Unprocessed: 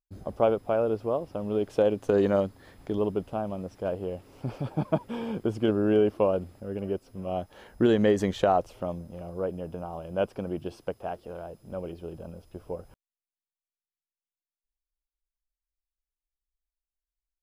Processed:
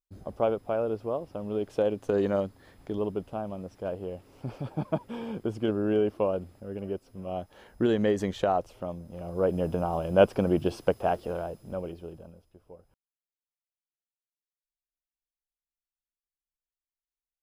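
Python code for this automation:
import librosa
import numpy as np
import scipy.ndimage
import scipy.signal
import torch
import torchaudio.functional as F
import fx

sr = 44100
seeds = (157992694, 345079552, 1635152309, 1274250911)

y = fx.gain(x, sr, db=fx.line((9.0, -3.0), (9.61, 8.0), (11.24, 8.0), (12.1, -3.0), (12.57, -14.0)))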